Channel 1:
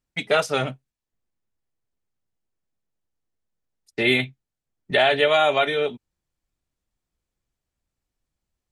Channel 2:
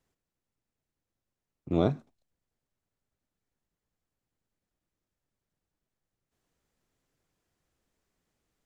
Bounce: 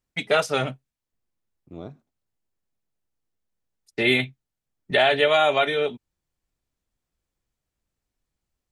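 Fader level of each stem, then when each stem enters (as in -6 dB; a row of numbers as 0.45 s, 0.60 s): -0.5 dB, -13.0 dB; 0.00 s, 0.00 s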